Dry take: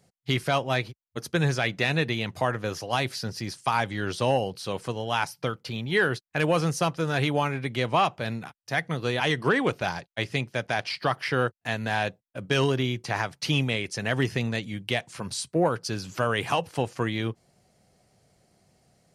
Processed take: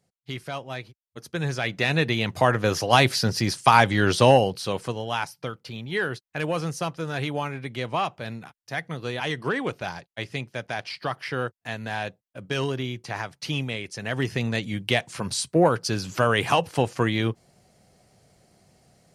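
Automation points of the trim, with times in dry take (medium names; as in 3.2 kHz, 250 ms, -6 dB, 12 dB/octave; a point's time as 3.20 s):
1.05 s -8.5 dB
1.84 s +1.5 dB
2.86 s +9 dB
4.19 s +9 dB
5.38 s -3.5 dB
13.99 s -3.5 dB
14.72 s +4.5 dB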